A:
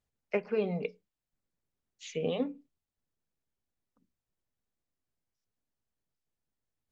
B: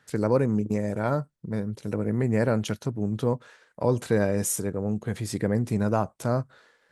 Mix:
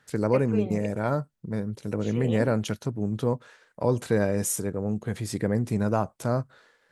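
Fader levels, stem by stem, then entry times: -2.0, -0.5 dB; 0.00, 0.00 s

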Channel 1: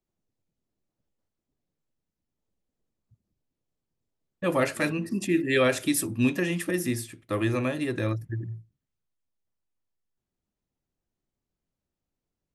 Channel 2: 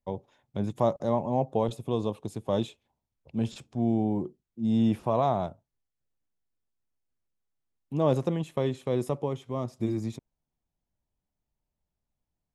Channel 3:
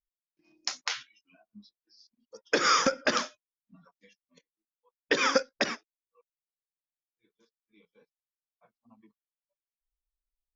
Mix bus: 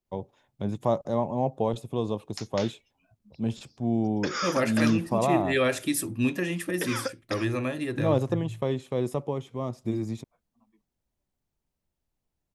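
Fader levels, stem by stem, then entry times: -2.0, 0.0, -7.5 dB; 0.00, 0.05, 1.70 s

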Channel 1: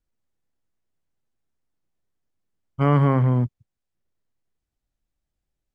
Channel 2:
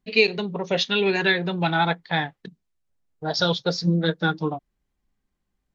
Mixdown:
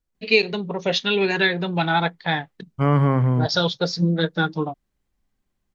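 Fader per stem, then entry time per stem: 0.0, +1.0 dB; 0.00, 0.15 s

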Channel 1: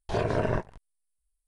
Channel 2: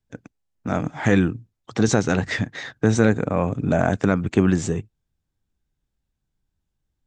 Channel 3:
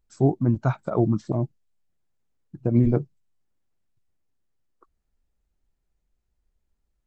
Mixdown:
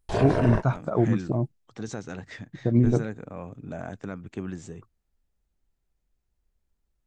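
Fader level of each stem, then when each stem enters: +1.5, -16.5, -1.0 dB; 0.00, 0.00, 0.00 s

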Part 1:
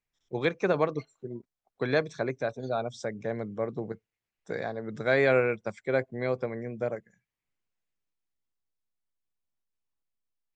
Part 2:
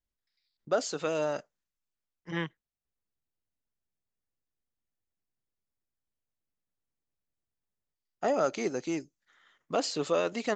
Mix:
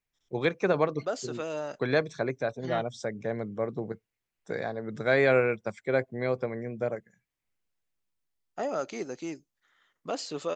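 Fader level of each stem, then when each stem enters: +0.5, -4.0 dB; 0.00, 0.35 s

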